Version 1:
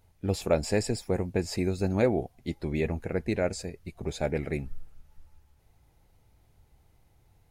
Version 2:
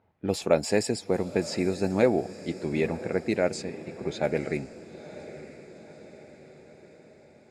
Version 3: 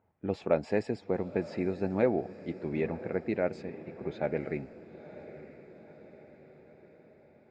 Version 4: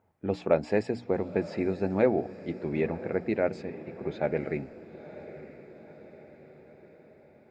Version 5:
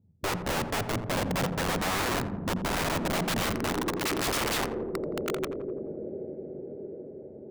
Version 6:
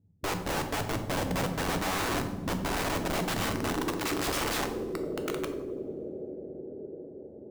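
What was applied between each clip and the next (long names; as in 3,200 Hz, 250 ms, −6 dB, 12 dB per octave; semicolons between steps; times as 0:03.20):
low-pass that shuts in the quiet parts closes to 1,700 Hz, open at −23 dBFS; high-pass filter 170 Hz 12 dB per octave; feedback delay with all-pass diffusion 955 ms, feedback 55%, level −15 dB; level +3 dB
low-pass filter 2,300 Hz 12 dB per octave; level −4.5 dB
mains-hum notches 60/120/180/240/300 Hz; level +3 dB
low-pass filter sweep 170 Hz → 420 Hz, 0:02.59–0:04.24; wrap-around overflow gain 31 dB; feedback echo with a low-pass in the loop 85 ms, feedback 80%, low-pass 1,100 Hz, level −8 dB; level +7 dB
adaptive Wiener filter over 15 samples; on a send at −6.5 dB: convolution reverb, pre-delay 3 ms; on the sum: level −2 dB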